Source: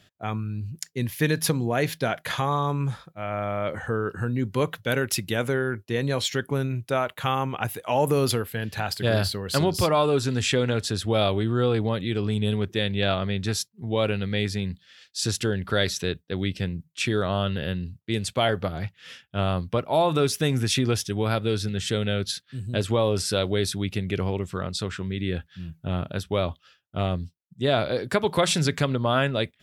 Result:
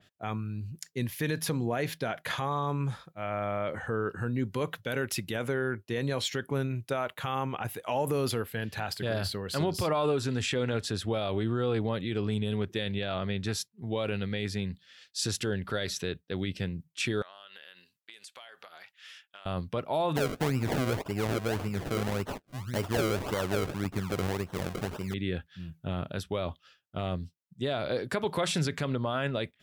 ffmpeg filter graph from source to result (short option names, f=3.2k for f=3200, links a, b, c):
-filter_complex "[0:a]asettb=1/sr,asplit=3[a][b][c];[a]atrim=end=17.224[d];[b]atrim=start=17.22:end=19.46,asetpts=PTS-STARTPTS,afade=t=in:d=0.004:c=qsin,afade=t=out:st=2.236:d=0.004:c=qsin,highpass=1.1k,acompressor=threshold=-41dB:ratio=16:attack=3.2:release=140:knee=1:detection=peak[e];[c]atrim=start=19.456[f];[d][e]acrossfade=d=0.004:c1=hsin:c2=qsin[g];[g][f]acrossfade=d=0.004:c1=qsin:c2=hsin,asettb=1/sr,asplit=3[h][i][j];[h]atrim=end=20.164[k];[i]atrim=start=20.16:end=25.14,asetpts=PTS-STARTPTS,afade=t=in:d=0.004:c=qsin,afade=t=out:st=4.976:d=0.004:c=qsin,lowpass=6.5k,acrusher=samples=34:mix=1:aa=0.000001:lfo=1:lforange=34:lforate=1.8[l];[j]atrim=start=25.136[m];[k][l]acrossfade=d=0.004:c1=hsin:c2=qsin[n];[n][m]acrossfade=d=0.004:c1=qsin:c2=hsin,lowshelf=f=110:g=-4.5,alimiter=limit=-16.5dB:level=0:latency=1:release=32,adynamicequalizer=threshold=0.00708:dfrequency=3500:dqfactor=0.7:tfrequency=3500:tqfactor=0.7:attack=5:release=100:ratio=0.375:range=2:mode=cutabove:tftype=highshelf,volume=-3dB"